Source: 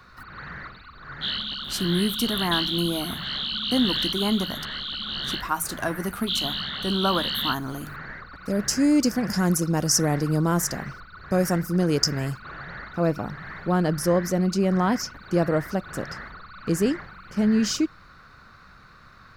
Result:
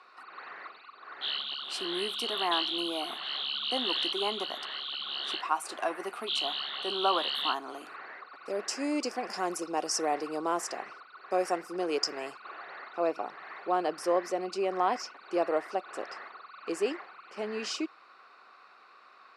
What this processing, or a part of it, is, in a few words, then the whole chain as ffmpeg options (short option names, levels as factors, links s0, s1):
phone speaker on a table: -af "highpass=f=350:w=0.5412,highpass=f=350:w=1.3066,equalizer=f=390:t=q:w=4:g=4,equalizer=f=750:t=q:w=4:g=8,equalizer=f=1100:t=q:w=4:g=5,equalizer=f=1600:t=q:w=4:g=-4,equalizer=f=2600:t=q:w=4:g=8,equalizer=f=6400:t=q:w=4:g=-7,lowpass=f=9000:w=0.5412,lowpass=f=9000:w=1.3066,volume=0.473"